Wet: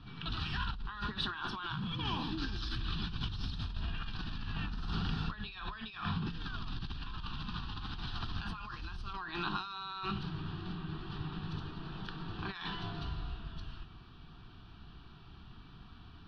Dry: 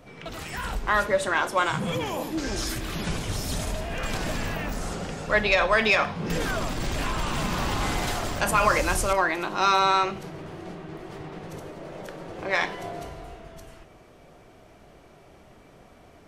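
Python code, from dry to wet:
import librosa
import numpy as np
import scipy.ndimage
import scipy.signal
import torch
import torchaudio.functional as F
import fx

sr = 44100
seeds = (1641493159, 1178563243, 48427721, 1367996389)

y = scipy.signal.sosfilt(scipy.signal.cheby1(3, 1.0, 4200.0, 'lowpass', fs=sr, output='sos'), x)
y = fx.peak_eq(y, sr, hz=540.0, db=-12.0, octaves=2.3)
y = fx.over_compress(y, sr, threshold_db=-37.0, ratio=-1.0)
y = fx.fixed_phaser(y, sr, hz=2100.0, stages=6)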